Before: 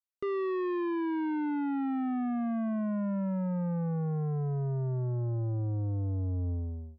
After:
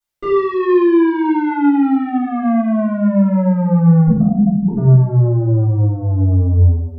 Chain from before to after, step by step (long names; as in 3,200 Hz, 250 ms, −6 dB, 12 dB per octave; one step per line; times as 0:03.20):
0:04.07–0:04.77: three sine waves on the formant tracks
0:05.44–0:06.09: high-shelf EQ 2,500 Hz −10 dB
rectangular room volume 110 cubic metres, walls mixed, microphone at 3.9 metres
level +2.5 dB